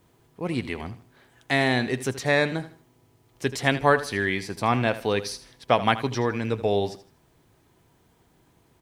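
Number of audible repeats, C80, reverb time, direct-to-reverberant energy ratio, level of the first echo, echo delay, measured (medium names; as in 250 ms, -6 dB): 2, no reverb, no reverb, no reverb, -14.5 dB, 79 ms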